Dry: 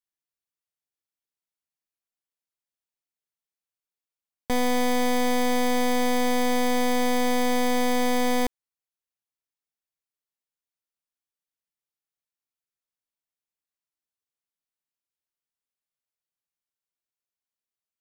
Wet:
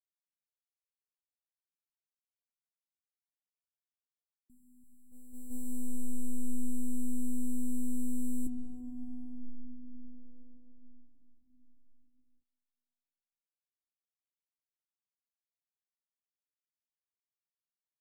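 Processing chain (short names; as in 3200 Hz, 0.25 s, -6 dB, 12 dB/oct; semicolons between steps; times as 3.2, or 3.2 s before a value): brick-wall FIR band-stop 360–7200 Hz; bouncing-ball echo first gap 0.34 s, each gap 0.8×, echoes 5; gate -15 dBFS, range -47 dB; reverb RT60 5.6 s, pre-delay 45 ms, DRR 2.5 dB; treble ducked by the level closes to 580 Hz, closed at -11 dBFS; gain +12 dB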